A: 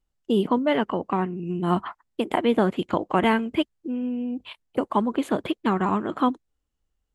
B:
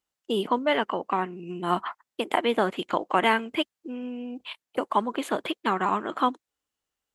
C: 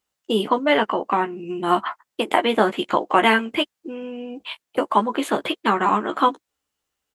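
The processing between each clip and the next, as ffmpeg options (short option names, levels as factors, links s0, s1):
-af "highpass=f=770:p=1,volume=1.41"
-filter_complex "[0:a]asplit=2[s0][s1];[s1]adelay=14,volume=0.501[s2];[s0][s2]amix=inputs=2:normalize=0,volume=1.78"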